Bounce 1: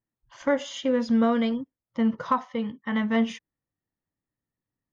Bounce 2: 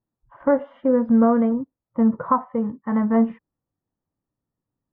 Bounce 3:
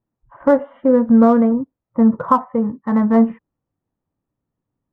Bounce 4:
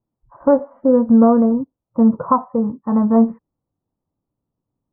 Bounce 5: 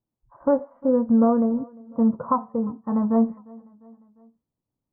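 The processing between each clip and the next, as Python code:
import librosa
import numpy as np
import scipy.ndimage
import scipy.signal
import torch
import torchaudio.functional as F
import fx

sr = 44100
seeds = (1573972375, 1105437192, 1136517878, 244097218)

y1 = scipy.signal.sosfilt(scipy.signal.butter(4, 1300.0, 'lowpass', fs=sr, output='sos'), x)
y1 = y1 * librosa.db_to_amplitude(5.5)
y2 = fx.wiener(y1, sr, points=9)
y2 = y2 * librosa.db_to_amplitude(5.0)
y3 = scipy.signal.sosfilt(scipy.signal.butter(4, 1200.0, 'lowpass', fs=sr, output='sos'), y2)
y4 = fx.echo_feedback(y3, sr, ms=351, feedback_pct=54, wet_db=-24)
y4 = y4 * librosa.db_to_amplitude(-6.5)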